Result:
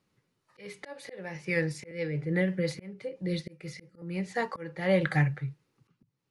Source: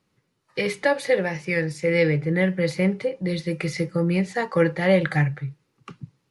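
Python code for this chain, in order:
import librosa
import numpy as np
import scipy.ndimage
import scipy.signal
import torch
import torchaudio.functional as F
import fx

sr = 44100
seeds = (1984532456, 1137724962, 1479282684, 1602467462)

y = fx.auto_swell(x, sr, attack_ms=492.0)
y = fx.rotary(y, sr, hz=6.0, at=(1.91, 4.02))
y = y * librosa.db_to_amplitude(-4.0)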